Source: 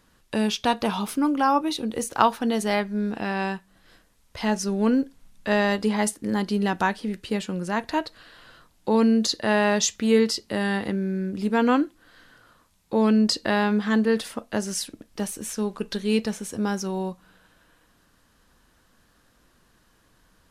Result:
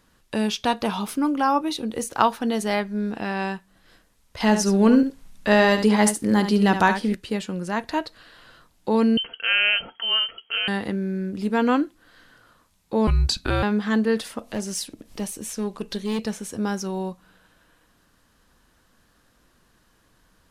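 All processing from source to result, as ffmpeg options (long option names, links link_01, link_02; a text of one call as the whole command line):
ffmpeg -i in.wav -filter_complex "[0:a]asettb=1/sr,asplit=3[link_01][link_02][link_03];[link_01]atrim=end=4.404[link_04];[link_02]atrim=start=4.4:end=7.15,asetpts=PTS-STARTPTS,afade=type=in:duration=0.004:curve=qsin,afade=type=out:start_time=2.746:duration=0.004:curve=qsin,aecho=1:1:71:0.335,atrim=end_sample=121275,acontrast=28[link_05];[link_03]atrim=start=7.146[link_06];[link_04][link_05]acrossfade=duration=0.004:curve1=hsin:curve2=qsin[link_07];[link_07][link_06]acrossfade=duration=0.004:curve1=qsin:curve2=hsin,asettb=1/sr,asplit=3[link_08][link_09][link_10];[link_08]atrim=end=9.174[link_11];[link_09]atrim=start=9.17:end=10.68,asetpts=PTS-STARTPTS,afade=type=in:duration=0.004:curve=qsin,afade=type=out:start_time=1.506:duration=0.004:curve=qsin,lowpass=frequency=2800:width_type=q:width=0.5098,lowpass=frequency=2800:width_type=q:width=0.6013,lowpass=frequency=2800:width_type=q:width=0.9,lowpass=frequency=2800:width_type=q:width=2.563,afreqshift=-3300,aecho=1:1:4.4:0.43,atrim=end_sample=66591[link_12];[link_10]atrim=start=10.676[link_13];[link_11][link_12]acrossfade=duration=0.004:curve1=hsin:curve2=qsin[link_14];[link_14][link_13]acrossfade=duration=0.004:curve1=qsin:curve2=hsin,asettb=1/sr,asplit=3[link_15][link_16][link_17];[link_15]atrim=end=13.074[link_18];[link_16]atrim=start=13.07:end=13.63,asetpts=PTS-STARTPTS,afade=type=in:duration=0.004:curve=qsin,afade=type=out:start_time=0.556:duration=0.004:curve=qsin,equalizer=frequency=11000:width=4.5:gain=4,afreqshift=-280[link_19];[link_17]atrim=start=13.626[link_20];[link_18][link_19]acrossfade=duration=0.004:curve1=hsin:curve2=qsin[link_21];[link_21][link_20]acrossfade=duration=0.004:curve1=qsin:curve2=hsin,asettb=1/sr,asplit=3[link_22][link_23][link_24];[link_22]atrim=end=14.394[link_25];[link_23]atrim=start=14.39:end=16.27,asetpts=PTS-STARTPTS,afade=type=in:duration=0.004:curve=qsin,afade=type=out:start_time=1.876:duration=0.004:curve=qsin,asoftclip=type=hard:threshold=-21.5dB,equalizer=frequency=1500:width_type=o:width=0.59:gain=-4.5,acompressor=mode=upward:threshold=-34dB:ratio=2.5:attack=3.2:release=140:knee=2.83:detection=peak[link_26];[link_24]atrim=start=16.266[link_27];[link_25][link_26]acrossfade=duration=0.004:curve1=hsin:curve2=qsin[link_28];[link_28][link_27]acrossfade=duration=0.004:curve1=qsin:curve2=hsin" out.wav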